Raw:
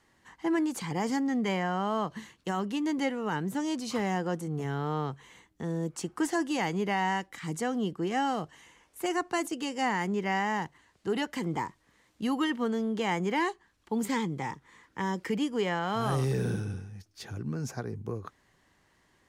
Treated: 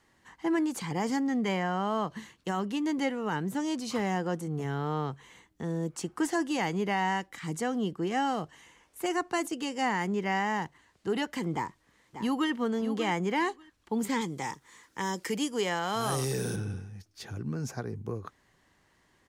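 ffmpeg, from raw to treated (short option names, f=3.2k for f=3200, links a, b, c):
-filter_complex "[0:a]asplit=2[a][b];[b]afade=t=in:st=11.54:d=0.01,afade=t=out:st=12.51:d=0.01,aecho=0:1:590|1180:0.298538|0.0447807[c];[a][c]amix=inputs=2:normalize=0,asettb=1/sr,asplit=3[d][e][f];[d]atrim=end=14.214[g];[e]atrim=start=14.21:end=16.56,asetpts=PTS-STARTPTS,afade=t=in:d=0.004:c=qsin,afade=t=out:st=2.346:d=0.004:c=qsin,bass=f=250:g=-5,treble=f=4k:g=11[h];[f]atrim=start=16.556[i];[g][h]acrossfade=d=0.004:c1=hsin:c2=qsin[j];[j][i]acrossfade=d=0.004:c1=qsin:c2=hsin"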